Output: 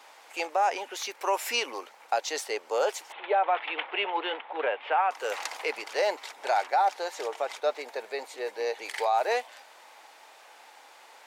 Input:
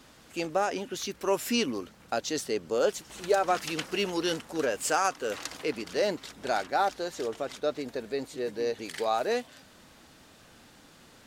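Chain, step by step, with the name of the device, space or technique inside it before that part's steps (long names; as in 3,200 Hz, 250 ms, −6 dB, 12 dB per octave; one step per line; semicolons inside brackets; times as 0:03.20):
laptop speaker (high-pass filter 450 Hz 24 dB per octave; parametric band 860 Hz +12 dB 0.59 octaves; parametric band 2,200 Hz +7 dB 0.54 octaves; brickwall limiter −16 dBFS, peak gain reduction 7.5 dB)
0:03.12–0:05.11: Chebyshev band-pass filter 180–3,500 Hz, order 5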